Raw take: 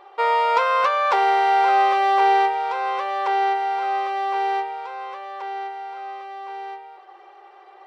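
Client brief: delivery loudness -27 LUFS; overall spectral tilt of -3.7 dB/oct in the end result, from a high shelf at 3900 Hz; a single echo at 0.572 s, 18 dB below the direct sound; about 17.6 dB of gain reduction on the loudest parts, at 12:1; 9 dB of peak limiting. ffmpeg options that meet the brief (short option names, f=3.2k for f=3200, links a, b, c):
-af "highshelf=f=3.9k:g=-7,acompressor=threshold=-32dB:ratio=12,alimiter=level_in=6.5dB:limit=-24dB:level=0:latency=1,volume=-6.5dB,aecho=1:1:572:0.126,volume=11.5dB"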